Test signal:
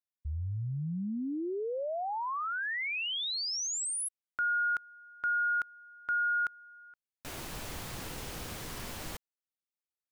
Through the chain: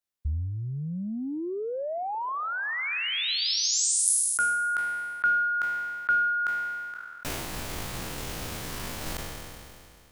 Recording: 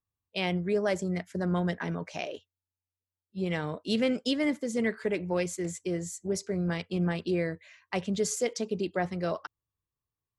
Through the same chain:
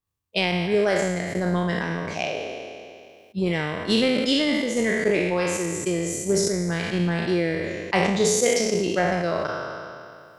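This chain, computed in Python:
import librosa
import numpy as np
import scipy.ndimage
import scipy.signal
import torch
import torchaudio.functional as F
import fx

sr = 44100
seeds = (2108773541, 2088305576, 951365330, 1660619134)

y = fx.spec_trails(x, sr, decay_s=1.39)
y = fx.transient(y, sr, attack_db=7, sustain_db=-7)
y = fx.sustainer(y, sr, db_per_s=25.0)
y = y * librosa.db_to_amplitude(2.0)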